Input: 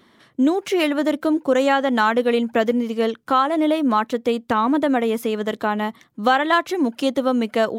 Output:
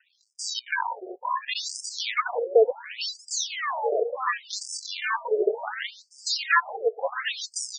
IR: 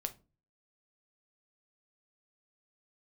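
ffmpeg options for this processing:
-filter_complex "[0:a]highpass=frequency=150:width=0.5412,highpass=frequency=150:width=1.3066,equalizer=frequency=230:width_type=q:width=4:gain=-5,equalizer=frequency=430:width_type=q:width=4:gain=8,equalizer=frequency=670:width_type=q:width=4:gain=-8,equalizer=frequency=2800:width_type=q:width=4:gain=5,lowpass=frequency=9600:width=0.5412,lowpass=frequency=9600:width=1.3066,acrusher=samples=39:mix=1:aa=0.000001:lfo=1:lforange=62.4:lforate=0.26,asplit=2[link_01][link_02];[link_02]adelay=857,lowpass=frequency=2400:poles=1,volume=-12dB,asplit=2[link_03][link_04];[link_04]adelay=857,lowpass=frequency=2400:poles=1,volume=0.55,asplit=2[link_05][link_06];[link_06]adelay=857,lowpass=frequency=2400:poles=1,volume=0.55,asplit=2[link_07][link_08];[link_08]adelay=857,lowpass=frequency=2400:poles=1,volume=0.55,asplit=2[link_09][link_10];[link_10]adelay=857,lowpass=frequency=2400:poles=1,volume=0.55,asplit=2[link_11][link_12];[link_12]adelay=857,lowpass=frequency=2400:poles=1,volume=0.55[link_13];[link_03][link_05][link_07][link_09][link_11][link_13]amix=inputs=6:normalize=0[link_14];[link_01][link_14]amix=inputs=2:normalize=0,afftfilt=real='re*between(b*sr/1024,520*pow(6800/520,0.5+0.5*sin(2*PI*0.69*pts/sr))/1.41,520*pow(6800/520,0.5+0.5*sin(2*PI*0.69*pts/sr))*1.41)':imag='im*between(b*sr/1024,520*pow(6800/520,0.5+0.5*sin(2*PI*0.69*pts/sr))/1.41,520*pow(6800/520,0.5+0.5*sin(2*PI*0.69*pts/sr))*1.41)':win_size=1024:overlap=0.75,volume=2dB"

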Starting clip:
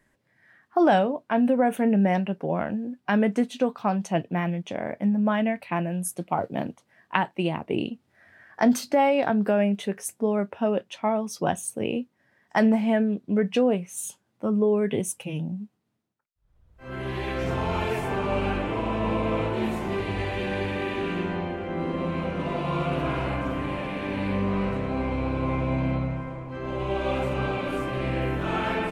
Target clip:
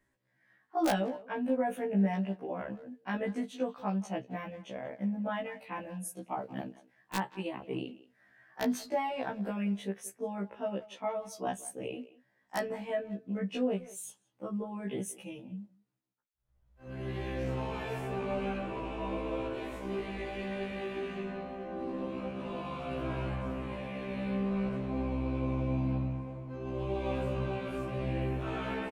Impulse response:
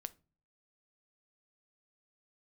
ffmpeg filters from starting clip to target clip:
-filter_complex "[0:a]aeval=exprs='(mod(3.16*val(0)+1,2)-1)/3.16':channel_layout=same,asplit=2[link_01][link_02];[link_02]adelay=180,highpass=300,lowpass=3400,asoftclip=type=hard:threshold=-18dB,volume=-17dB[link_03];[link_01][link_03]amix=inputs=2:normalize=0,afftfilt=real='re*1.73*eq(mod(b,3),0)':imag='im*1.73*eq(mod(b,3),0)':win_size=2048:overlap=0.75,volume=-7.5dB"

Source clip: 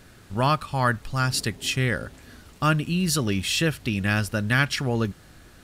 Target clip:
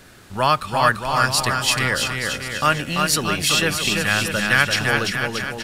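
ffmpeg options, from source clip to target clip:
ffmpeg -i in.wav -filter_complex "[0:a]acrossover=split=460[link_01][link_02];[link_01]asoftclip=type=tanh:threshold=-27.5dB[link_03];[link_03][link_02]amix=inputs=2:normalize=0,lowshelf=frequency=210:gain=-7,aecho=1:1:340|629|874.6|1083|1261:0.631|0.398|0.251|0.158|0.1,volume=6dB" out.wav

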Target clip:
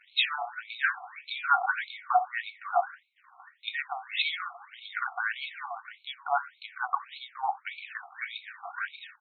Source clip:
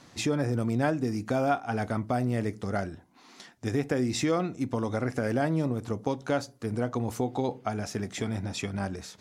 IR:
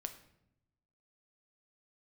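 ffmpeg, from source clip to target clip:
-filter_complex "[0:a]highpass=82,equalizer=frequency=3800:width_type=o:width=0.28:gain=7,aecho=1:1:2.7:0.32,aeval=exprs='sgn(val(0))*max(abs(val(0))-0.00224,0)':channel_layout=same,asplit=2[link_01][link_02];[1:a]atrim=start_sample=2205[link_03];[link_02][link_03]afir=irnorm=-1:irlink=0,volume=2.5dB[link_04];[link_01][link_04]amix=inputs=2:normalize=0,afftfilt=real='re*between(b*sr/1024,960*pow(3100/960,0.5+0.5*sin(2*PI*1.7*pts/sr))/1.41,960*pow(3100/960,0.5+0.5*sin(2*PI*1.7*pts/sr))*1.41)':imag='im*between(b*sr/1024,960*pow(3100/960,0.5+0.5*sin(2*PI*1.7*pts/sr))/1.41,960*pow(3100/960,0.5+0.5*sin(2*PI*1.7*pts/sr))*1.41)':win_size=1024:overlap=0.75,volume=4.5dB"

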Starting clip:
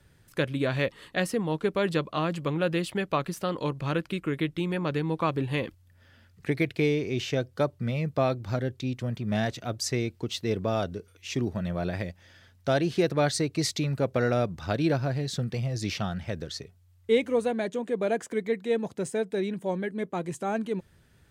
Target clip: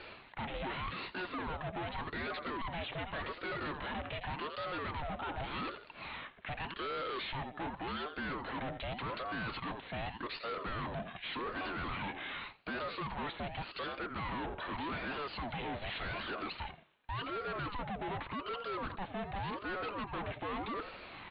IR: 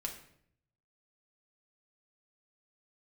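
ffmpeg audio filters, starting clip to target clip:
-filter_complex "[0:a]highpass=330,bandreject=frequency=1700:width=14,areverse,acompressor=threshold=-40dB:ratio=6,areverse,aecho=1:1:86|172:0.0794|0.0254,asplit=2[link_01][link_02];[link_02]highpass=frequency=720:poles=1,volume=27dB,asoftclip=type=tanh:threshold=-27.5dB[link_03];[link_01][link_03]amix=inputs=2:normalize=0,lowpass=frequency=2000:poles=1,volume=-6dB,aresample=11025,asoftclip=type=tanh:threshold=-39.5dB,aresample=44100,aresample=8000,aresample=44100,aeval=exprs='val(0)*sin(2*PI*580*n/s+580*0.6/0.86*sin(2*PI*0.86*n/s))':channel_layout=same,volume=6dB"

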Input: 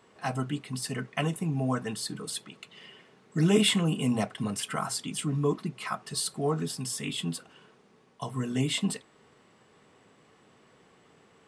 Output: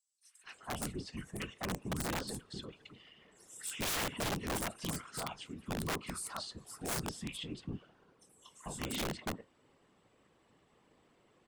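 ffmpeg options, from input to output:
ffmpeg -i in.wav -filter_complex "[0:a]acrossover=split=1600|5900[link_01][link_02][link_03];[link_02]adelay=230[link_04];[link_01]adelay=440[link_05];[link_05][link_04][link_03]amix=inputs=3:normalize=0,afftfilt=real='hypot(re,im)*cos(2*PI*random(0))':imag='hypot(re,im)*sin(2*PI*random(1))':win_size=512:overlap=0.75,aeval=exprs='(mod(25.1*val(0)+1,2)-1)/25.1':channel_layout=same,volume=-2dB" out.wav

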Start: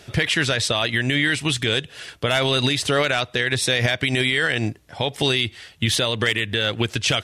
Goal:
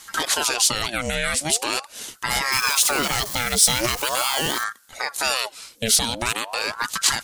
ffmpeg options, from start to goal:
ffmpeg -i in.wav -filter_complex "[0:a]asettb=1/sr,asplit=3[link_01][link_02][link_03];[link_01]atrim=end=2.524[link_04];[link_02]atrim=start=2.52:end=4.64,asetpts=PTS-STARTPTS,afade=type=in:duration=0.004:curve=qsin,afade=type=out:start_time=2.116:duration=0.004:curve=qsin,aeval=exprs='val(0)+0.5*0.0316*sgn(val(0))':channel_layout=same[link_05];[link_03]atrim=start=4.636[link_06];[link_04][link_05]acrossfade=duration=0.004:curve1=hsin:curve2=qsin[link_07];[link_07][link_06]acrossfade=duration=0.004:curve1=qsin:curve2=hsin,aexciter=amount=3.8:drive=7.9:freq=4500,aeval=exprs='val(0)*sin(2*PI*910*n/s+910*0.65/0.42*sin(2*PI*0.42*n/s))':channel_layout=same,volume=-1.5dB" out.wav

